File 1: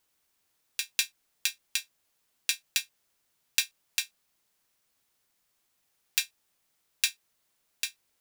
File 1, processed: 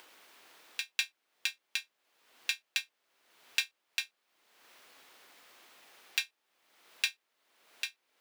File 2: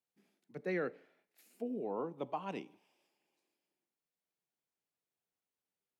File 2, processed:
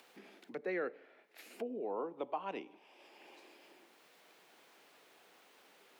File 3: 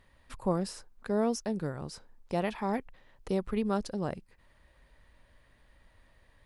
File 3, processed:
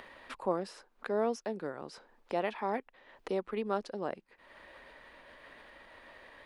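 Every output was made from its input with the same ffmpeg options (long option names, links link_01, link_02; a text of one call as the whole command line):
ffmpeg -i in.wav -filter_complex "[0:a]acompressor=mode=upward:threshold=-33dB:ratio=2.5,acrossover=split=260 4100:gain=0.0794 1 0.224[link_01][link_02][link_03];[link_01][link_02][link_03]amix=inputs=3:normalize=0" out.wav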